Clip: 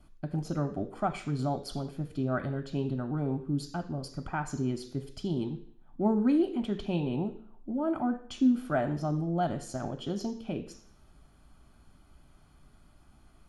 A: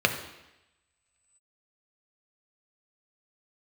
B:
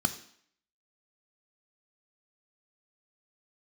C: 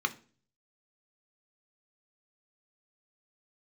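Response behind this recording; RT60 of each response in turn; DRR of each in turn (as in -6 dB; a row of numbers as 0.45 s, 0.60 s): B; 0.95 s, 0.60 s, 0.40 s; 4.5 dB, 8.5 dB, 6.5 dB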